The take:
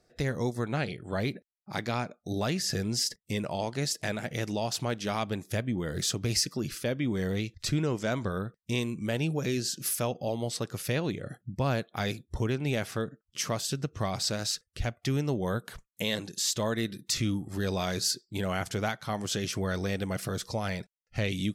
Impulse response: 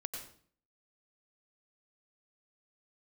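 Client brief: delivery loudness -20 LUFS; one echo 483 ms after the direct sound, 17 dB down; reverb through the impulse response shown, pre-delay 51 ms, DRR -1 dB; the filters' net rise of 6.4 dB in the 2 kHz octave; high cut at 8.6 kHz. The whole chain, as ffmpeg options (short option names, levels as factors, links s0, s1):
-filter_complex "[0:a]lowpass=8600,equalizer=f=2000:t=o:g=8,aecho=1:1:483:0.141,asplit=2[s0][s1];[1:a]atrim=start_sample=2205,adelay=51[s2];[s1][s2]afir=irnorm=-1:irlink=0,volume=1.26[s3];[s0][s3]amix=inputs=2:normalize=0,volume=2.11"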